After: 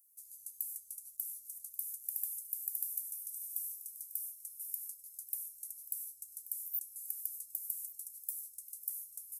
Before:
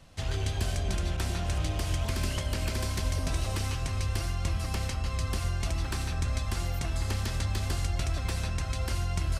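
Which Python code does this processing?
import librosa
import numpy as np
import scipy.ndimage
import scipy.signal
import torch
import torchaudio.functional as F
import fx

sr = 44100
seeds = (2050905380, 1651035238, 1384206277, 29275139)

y = scipy.signal.sosfilt(scipy.signal.cheby2(4, 80, 2900.0, 'highpass', fs=sr, output='sos'), x)
y = y + 10.0 ** (-15.5 / 20.0) * np.pad(y, (int(1133 * sr / 1000.0), 0))[:len(y)]
y = y * librosa.db_to_amplitude(18.0)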